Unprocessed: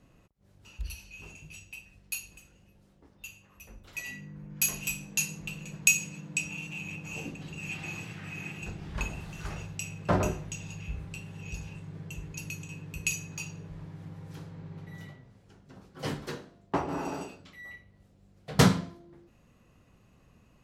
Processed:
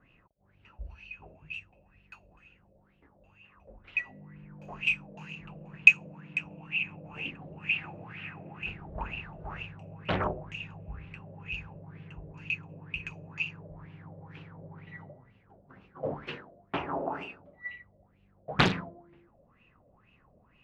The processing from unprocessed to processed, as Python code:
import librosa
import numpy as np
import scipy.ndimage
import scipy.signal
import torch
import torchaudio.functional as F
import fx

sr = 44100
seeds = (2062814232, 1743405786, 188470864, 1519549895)

y = fx.filter_lfo_lowpass(x, sr, shape='sine', hz=2.1, low_hz=570.0, high_hz=2800.0, q=7.4)
y = fx.doppler_dist(y, sr, depth_ms=0.98)
y = y * 10.0 ** (-5.0 / 20.0)